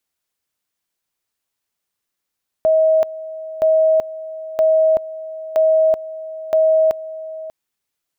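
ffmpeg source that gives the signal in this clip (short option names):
-f lavfi -i "aevalsrc='pow(10,(-10.5-16.5*gte(mod(t,0.97),0.38))/20)*sin(2*PI*636*t)':d=4.85:s=44100"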